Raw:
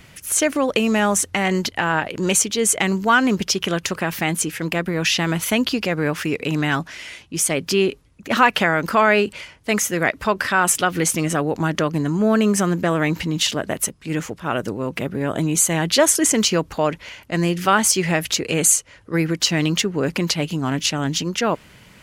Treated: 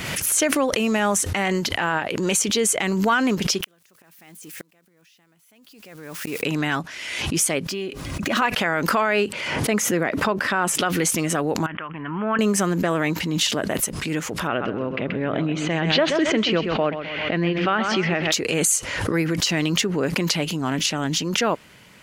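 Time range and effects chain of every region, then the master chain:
3.63–6.43 switching spikes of -21.5 dBFS + flipped gate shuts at -16 dBFS, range -38 dB
7.68–8.42 median filter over 3 samples + notch comb 450 Hz + compressor 3:1, threshold -25 dBFS
9.32–10.81 HPF 150 Hz + tilt -2 dB/oct
11.66–12.39 resonant low shelf 750 Hz -9.5 dB, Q 1.5 + compressor 5:1, threshold -26 dBFS + steep low-pass 3200 Hz 96 dB/oct
14.47–18.32 LPF 3400 Hz 24 dB/oct + bell 950 Hz -4.5 dB 0.31 oct + feedback echo 0.13 s, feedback 32%, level -10 dB
whole clip: low shelf 100 Hz -11.5 dB; maximiser +8 dB; backwards sustainer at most 35 dB/s; gain -9 dB

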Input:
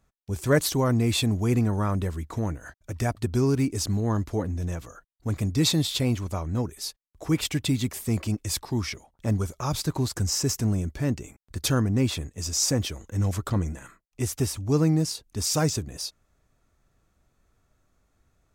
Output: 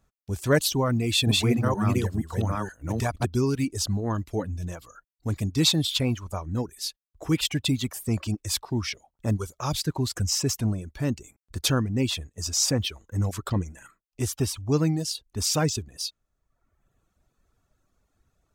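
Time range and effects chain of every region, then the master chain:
0.8–3.25 reverse delay 0.472 s, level -0.5 dB + short-mantissa float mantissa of 6-bit
whole clip: dynamic EQ 3100 Hz, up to +5 dB, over -43 dBFS, Q 1; reverb removal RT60 0.98 s; bell 2100 Hz -3 dB 0.35 oct

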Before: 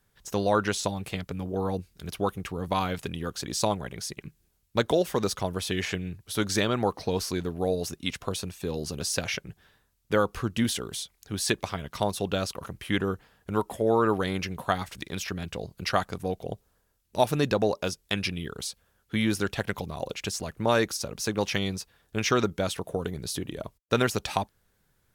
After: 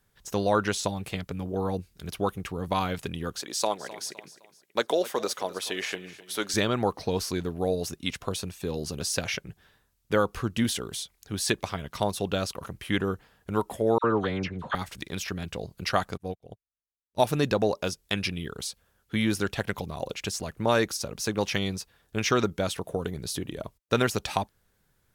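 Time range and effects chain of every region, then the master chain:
3.4–6.54 HPF 370 Hz + feedback echo 0.257 s, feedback 39%, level -16.5 dB
13.98–14.75 air absorption 140 m + dispersion lows, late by 59 ms, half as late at 1500 Hz
16.17–17.2 low shelf 78 Hz +8 dB + upward expander 2.5:1, over -51 dBFS
whole clip: dry

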